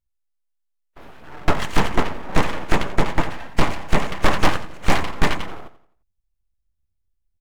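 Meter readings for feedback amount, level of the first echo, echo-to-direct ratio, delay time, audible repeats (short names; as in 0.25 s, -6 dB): 39%, -14.5 dB, -14.0 dB, 87 ms, 3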